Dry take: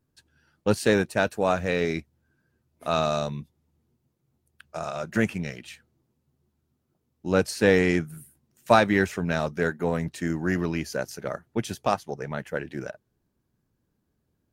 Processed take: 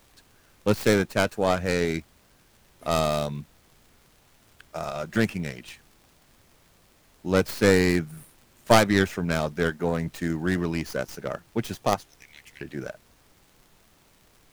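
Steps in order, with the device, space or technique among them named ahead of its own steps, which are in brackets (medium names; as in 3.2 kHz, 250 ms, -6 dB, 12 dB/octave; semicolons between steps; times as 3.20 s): 12.06–12.61 s: elliptic high-pass 2.1 kHz; record under a worn stylus (tracing distortion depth 0.34 ms; crackle; pink noise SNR 32 dB)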